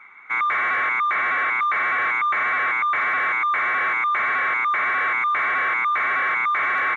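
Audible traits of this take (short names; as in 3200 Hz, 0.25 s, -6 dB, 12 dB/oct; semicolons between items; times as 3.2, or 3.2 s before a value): noise floor -24 dBFS; spectral tilt +2.0 dB/oct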